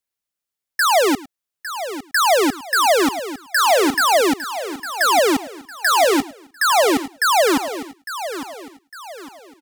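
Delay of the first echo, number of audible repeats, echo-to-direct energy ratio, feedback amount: 106 ms, 5, −10.5 dB, repeats not evenly spaced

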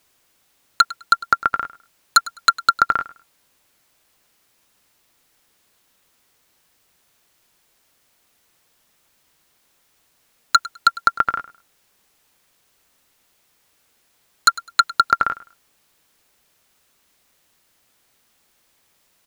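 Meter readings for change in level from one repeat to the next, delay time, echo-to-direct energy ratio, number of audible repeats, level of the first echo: −13.0 dB, 103 ms, −19.0 dB, 2, −19.0 dB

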